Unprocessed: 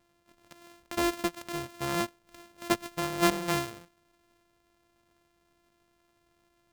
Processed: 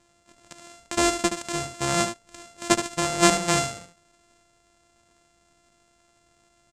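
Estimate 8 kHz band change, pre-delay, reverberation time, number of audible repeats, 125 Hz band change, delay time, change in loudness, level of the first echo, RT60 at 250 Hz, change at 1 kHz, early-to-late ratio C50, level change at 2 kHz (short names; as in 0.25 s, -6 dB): +13.5 dB, none, none, 1, +6.5 dB, 74 ms, +7.0 dB, -8.5 dB, none, +7.0 dB, none, +6.5 dB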